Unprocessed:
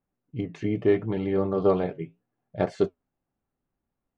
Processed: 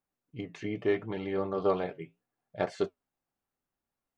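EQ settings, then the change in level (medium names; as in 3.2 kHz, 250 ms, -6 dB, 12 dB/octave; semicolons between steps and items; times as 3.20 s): bass shelf 490 Hz -11 dB; 0.0 dB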